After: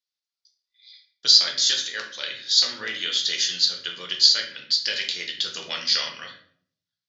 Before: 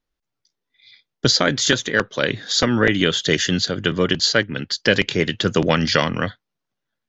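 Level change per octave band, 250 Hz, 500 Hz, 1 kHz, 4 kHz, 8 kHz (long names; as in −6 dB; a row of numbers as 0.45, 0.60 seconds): −27.0 dB, −21.5 dB, −14.5 dB, +2.0 dB, can't be measured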